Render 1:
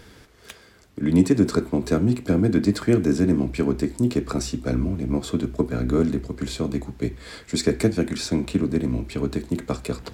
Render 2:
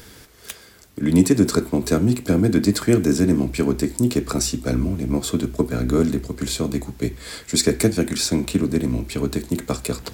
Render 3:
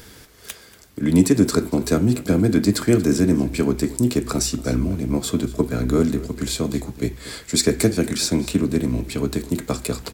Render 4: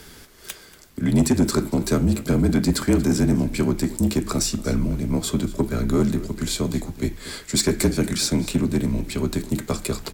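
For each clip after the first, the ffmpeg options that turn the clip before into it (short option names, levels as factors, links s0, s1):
-af "aemphasis=mode=production:type=50kf,volume=1.26"
-af "aecho=1:1:235:0.119"
-af "afreqshift=-35,asoftclip=type=tanh:threshold=0.299"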